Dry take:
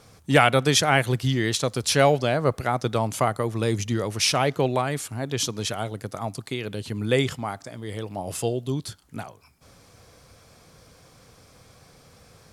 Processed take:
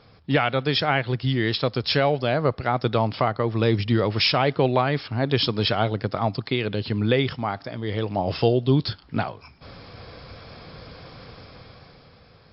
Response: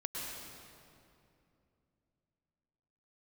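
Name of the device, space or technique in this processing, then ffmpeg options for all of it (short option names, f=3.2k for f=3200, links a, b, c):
low-bitrate web radio: -af "dynaudnorm=f=190:g=11:m=11.5dB,alimiter=limit=-7dB:level=0:latency=1:release=492" -ar 12000 -c:a libmp3lame -b:a 48k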